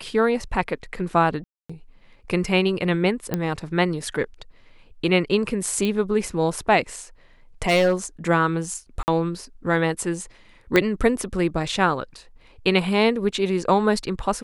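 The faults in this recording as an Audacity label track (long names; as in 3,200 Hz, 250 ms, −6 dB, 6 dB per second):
1.440000	1.700000	drop-out 255 ms
3.340000	3.340000	click −10 dBFS
5.850000	5.850000	click −13 dBFS
7.670000	7.930000	clipping −14 dBFS
9.030000	9.080000	drop-out 49 ms
10.760000	10.760000	click −5 dBFS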